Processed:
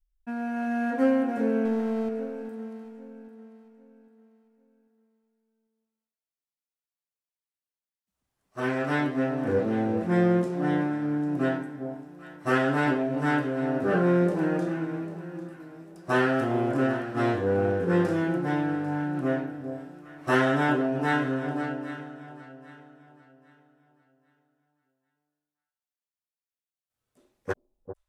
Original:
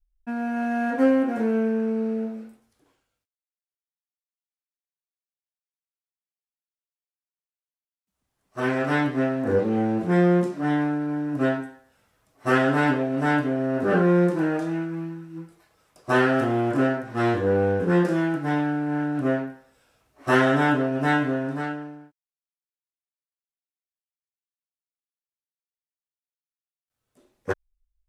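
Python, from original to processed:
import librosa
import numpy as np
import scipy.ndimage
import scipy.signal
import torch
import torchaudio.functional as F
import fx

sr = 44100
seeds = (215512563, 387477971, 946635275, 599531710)

y = fx.power_curve(x, sr, exponent=0.7, at=(1.65, 2.09))
y = fx.echo_alternate(y, sr, ms=398, hz=860.0, feedback_pct=55, wet_db=-8.5)
y = y * librosa.db_to_amplitude(-3.5)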